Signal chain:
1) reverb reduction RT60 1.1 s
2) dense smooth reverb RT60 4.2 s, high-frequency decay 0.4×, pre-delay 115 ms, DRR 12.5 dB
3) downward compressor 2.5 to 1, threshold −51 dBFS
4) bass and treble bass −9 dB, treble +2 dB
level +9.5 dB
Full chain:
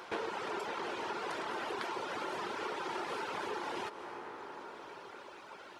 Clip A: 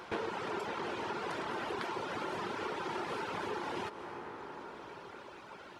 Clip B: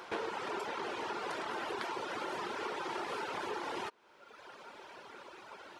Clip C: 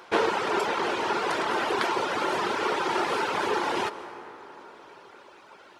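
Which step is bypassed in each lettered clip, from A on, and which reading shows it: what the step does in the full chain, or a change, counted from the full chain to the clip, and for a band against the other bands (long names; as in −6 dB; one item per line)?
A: 4, 125 Hz band +8.0 dB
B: 2, change in momentary loudness spread +2 LU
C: 3, average gain reduction 8.0 dB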